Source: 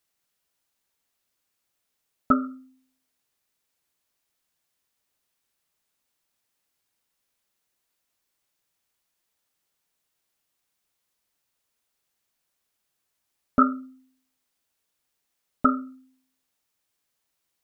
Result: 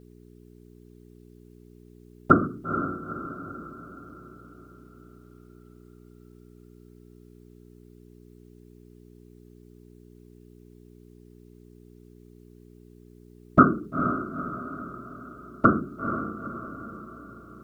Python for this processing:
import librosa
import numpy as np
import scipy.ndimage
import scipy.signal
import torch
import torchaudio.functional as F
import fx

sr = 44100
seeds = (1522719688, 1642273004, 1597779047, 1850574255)

y = fx.whisperise(x, sr, seeds[0])
y = fx.echo_diffused(y, sr, ms=464, feedback_pct=50, wet_db=-8)
y = fx.dmg_buzz(y, sr, base_hz=60.0, harmonics=7, level_db=-55.0, tilt_db=-1, odd_only=False)
y = y * 10.0 ** (4.0 / 20.0)